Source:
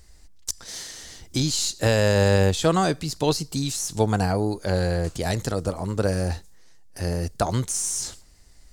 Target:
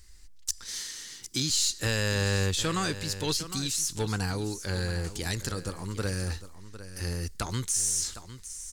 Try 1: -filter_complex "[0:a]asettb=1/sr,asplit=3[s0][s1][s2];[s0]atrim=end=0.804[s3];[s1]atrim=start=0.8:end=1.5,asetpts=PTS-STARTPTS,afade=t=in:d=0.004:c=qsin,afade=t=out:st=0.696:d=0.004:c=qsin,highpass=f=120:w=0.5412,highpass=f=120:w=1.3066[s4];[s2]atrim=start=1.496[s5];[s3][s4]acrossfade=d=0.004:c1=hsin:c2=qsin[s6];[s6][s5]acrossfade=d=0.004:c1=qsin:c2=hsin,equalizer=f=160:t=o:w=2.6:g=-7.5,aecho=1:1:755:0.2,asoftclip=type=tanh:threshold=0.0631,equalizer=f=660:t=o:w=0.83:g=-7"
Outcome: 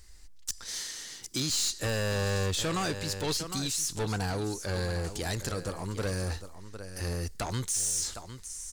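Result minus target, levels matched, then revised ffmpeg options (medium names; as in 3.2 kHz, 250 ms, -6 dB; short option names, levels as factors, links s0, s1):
saturation: distortion +11 dB; 500 Hz band +3.0 dB
-filter_complex "[0:a]asettb=1/sr,asplit=3[s0][s1][s2];[s0]atrim=end=0.804[s3];[s1]atrim=start=0.8:end=1.5,asetpts=PTS-STARTPTS,afade=t=in:d=0.004:c=qsin,afade=t=out:st=0.696:d=0.004:c=qsin,highpass=f=120:w=0.5412,highpass=f=120:w=1.3066[s4];[s2]atrim=start=1.496[s5];[s3][s4]acrossfade=d=0.004:c1=hsin:c2=qsin[s6];[s6][s5]acrossfade=d=0.004:c1=qsin:c2=hsin,equalizer=f=160:t=o:w=2.6:g=-7.5,aecho=1:1:755:0.2,asoftclip=type=tanh:threshold=0.188,equalizer=f=660:t=o:w=0.83:g=-16"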